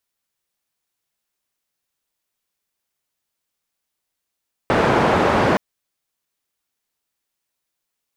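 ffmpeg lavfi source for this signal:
-f lavfi -i "anoisesrc=c=white:d=0.87:r=44100:seed=1,highpass=f=84,lowpass=f=950,volume=1.9dB"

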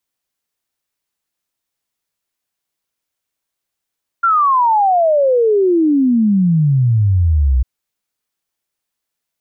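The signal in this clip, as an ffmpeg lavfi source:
-f lavfi -i "aevalsrc='0.335*clip(min(t,3.4-t)/0.01,0,1)*sin(2*PI*1400*3.4/log(60/1400)*(exp(log(60/1400)*t/3.4)-1))':d=3.4:s=44100"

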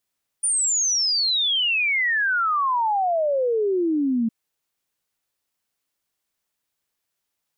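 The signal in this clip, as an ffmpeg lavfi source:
-f lavfi -i "aevalsrc='0.119*clip(min(t,3.86-t)/0.01,0,1)*sin(2*PI*9500*3.86/log(220/9500)*(exp(log(220/9500)*t/3.86)-1))':d=3.86:s=44100"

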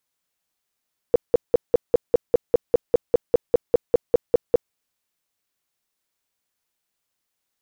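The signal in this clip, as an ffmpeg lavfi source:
-f lavfi -i "aevalsrc='0.335*sin(2*PI*480*mod(t,0.2))*lt(mod(t,0.2),8/480)':d=3.6:s=44100"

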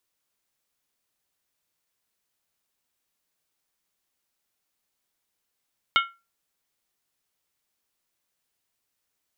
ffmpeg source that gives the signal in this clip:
-f lavfi -i "aevalsrc='0.168*pow(10,-3*t/0.27)*sin(2*PI*1370*t)+0.126*pow(10,-3*t/0.214)*sin(2*PI*2183.8*t)+0.0944*pow(10,-3*t/0.185)*sin(2*PI*2926.3*t)+0.0708*pow(10,-3*t/0.178)*sin(2*PI*3145.5*t)+0.0531*pow(10,-3*t/0.166)*sin(2*PI*3634.6*t)':d=0.63:s=44100"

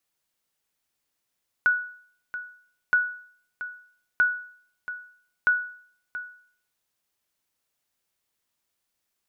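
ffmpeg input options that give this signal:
-f lavfi -i "aevalsrc='0.211*(sin(2*PI*1470*mod(t,1.27))*exp(-6.91*mod(t,1.27)/0.54)+0.211*sin(2*PI*1470*max(mod(t,1.27)-0.68,0))*exp(-6.91*max(mod(t,1.27)-0.68,0)/0.54))':d=5.08:s=44100"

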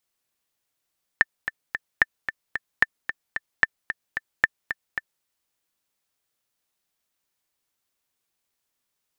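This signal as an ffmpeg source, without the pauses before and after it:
-f lavfi -i "aevalsrc='pow(10,(-2.5-10.5*gte(mod(t,3*60/223),60/223))/20)*sin(2*PI*1780*mod(t,60/223))*exp(-6.91*mod(t,60/223)/0.03)':d=4.03:s=44100"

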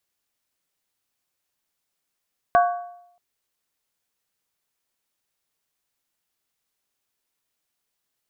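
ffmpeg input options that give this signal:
-f lavfi -i "aevalsrc='0.266*pow(10,-3*t/0.76)*sin(2*PI*705*t)+0.133*pow(10,-3*t/0.602)*sin(2*PI*1123.8*t)+0.0668*pow(10,-3*t/0.52)*sin(2*PI*1505.9*t)+0.0335*pow(10,-3*t/0.502)*sin(2*PI*1618.7*t)':d=0.63:s=44100"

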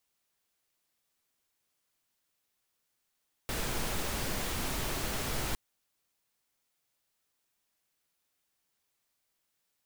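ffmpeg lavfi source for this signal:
-f lavfi -i "anoisesrc=c=pink:a=0.108:d=2.06:r=44100:seed=1"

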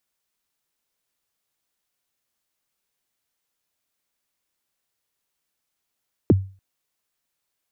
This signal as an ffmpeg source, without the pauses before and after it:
-f lavfi -i "aevalsrc='0.398*pow(10,-3*t/0.36)*sin(2*PI*(450*0.027/log(96/450)*(exp(log(96/450)*min(t,0.027)/0.027)-1)+96*max(t-0.027,0)))':d=0.29:s=44100"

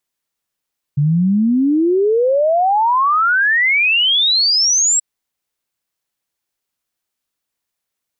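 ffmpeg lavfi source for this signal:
-f lavfi -i "aevalsrc='0.282*clip(min(t,4.03-t)/0.01,0,1)*sin(2*PI*140*4.03/log(7800/140)*(exp(log(7800/140)*t/4.03)-1))':d=4.03:s=44100"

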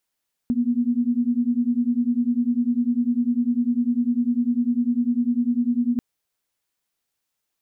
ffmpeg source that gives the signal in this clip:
-f lavfi -i "aevalsrc='0.0841*(sin(2*PI*236*t)+sin(2*PI*246*t))':d=5.49:s=44100"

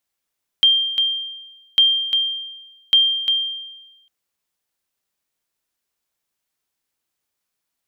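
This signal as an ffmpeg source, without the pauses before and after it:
-f lavfi -i "aevalsrc='0.422*(sin(2*PI*3180*mod(t,1.15))*exp(-6.91*mod(t,1.15)/1.11)+0.447*sin(2*PI*3180*max(mod(t,1.15)-0.35,0))*exp(-6.91*max(mod(t,1.15)-0.35,0)/1.11))':d=3.45:s=44100"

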